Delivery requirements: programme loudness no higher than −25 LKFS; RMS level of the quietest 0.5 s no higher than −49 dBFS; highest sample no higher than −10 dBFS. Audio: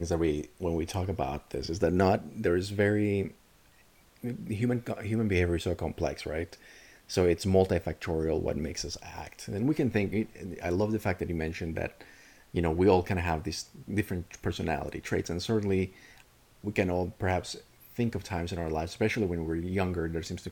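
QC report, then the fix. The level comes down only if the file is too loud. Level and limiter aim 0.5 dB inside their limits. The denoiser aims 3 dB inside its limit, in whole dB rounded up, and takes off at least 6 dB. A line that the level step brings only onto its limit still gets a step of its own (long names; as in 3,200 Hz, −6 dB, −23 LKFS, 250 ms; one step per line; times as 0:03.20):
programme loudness −30.5 LKFS: in spec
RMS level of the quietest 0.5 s −60 dBFS: in spec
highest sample −10.5 dBFS: in spec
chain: no processing needed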